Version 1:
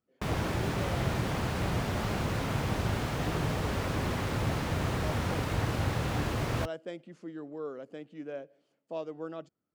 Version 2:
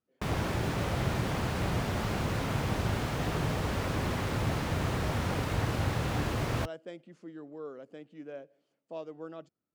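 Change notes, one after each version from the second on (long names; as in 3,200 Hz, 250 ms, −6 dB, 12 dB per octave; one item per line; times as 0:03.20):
speech −3.5 dB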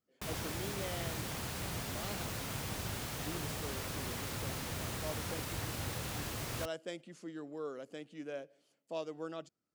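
background −11.0 dB
master: remove low-pass filter 1,500 Hz 6 dB per octave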